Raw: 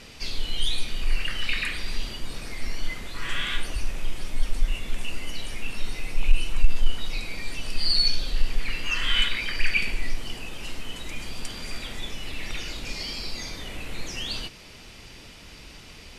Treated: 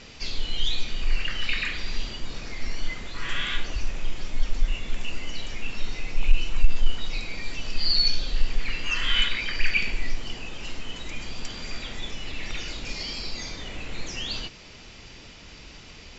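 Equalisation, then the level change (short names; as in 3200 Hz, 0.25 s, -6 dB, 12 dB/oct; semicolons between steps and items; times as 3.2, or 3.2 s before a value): brick-wall FIR low-pass 7700 Hz; 0.0 dB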